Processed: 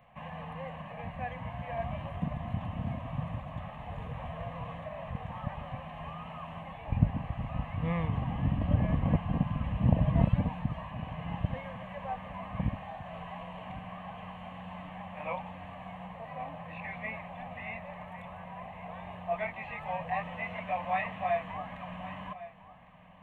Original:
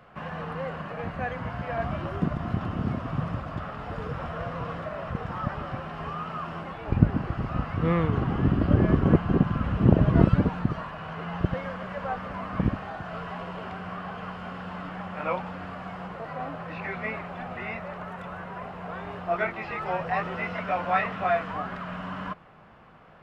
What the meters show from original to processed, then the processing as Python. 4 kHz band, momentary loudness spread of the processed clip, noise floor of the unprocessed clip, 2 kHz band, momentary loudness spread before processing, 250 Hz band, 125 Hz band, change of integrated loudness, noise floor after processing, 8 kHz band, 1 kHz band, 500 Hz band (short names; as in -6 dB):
-6.0 dB, 15 LU, -40 dBFS, -7.5 dB, 15 LU, -8.5 dB, -5.5 dB, -6.5 dB, -46 dBFS, n/a, -6.0 dB, -8.0 dB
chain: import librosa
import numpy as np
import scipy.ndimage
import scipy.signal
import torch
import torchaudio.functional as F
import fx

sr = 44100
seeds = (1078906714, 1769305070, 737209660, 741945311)

p1 = fx.fixed_phaser(x, sr, hz=1400.0, stages=6)
p2 = p1 + fx.echo_single(p1, sr, ms=1104, db=-15.5, dry=0)
y = p2 * librosa.db_to_amplitude(-4.0)